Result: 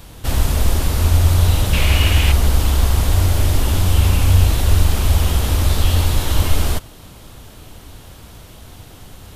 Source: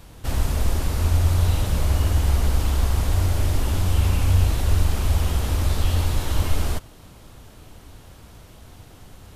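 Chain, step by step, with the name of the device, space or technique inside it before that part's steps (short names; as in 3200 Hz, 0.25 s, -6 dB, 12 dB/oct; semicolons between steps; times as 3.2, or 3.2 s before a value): presence and air boost (bell 3400 Hz +3 dB 0.77 oct; high shelf 10000 Hz +6 dB); 1.73–2.32 bell 2500 Hz +14 dB 0.91 oct; gain +5.5 dB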